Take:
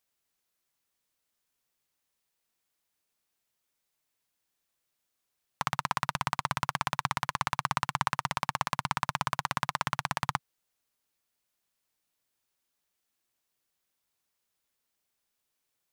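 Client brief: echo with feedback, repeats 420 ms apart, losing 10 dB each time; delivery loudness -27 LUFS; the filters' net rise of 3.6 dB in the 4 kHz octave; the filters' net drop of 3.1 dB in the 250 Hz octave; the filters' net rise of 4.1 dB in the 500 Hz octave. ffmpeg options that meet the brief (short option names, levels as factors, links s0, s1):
-af "equalizer=f=250:t=o:g=-7.5,equalizer=f=500:t=o:g=7,equalizer=f=4000:t=o:g=4.5,aecho=1:1:420|840|1260|1680:0.316|0.101|0.0324|0.0104,volume=1.12"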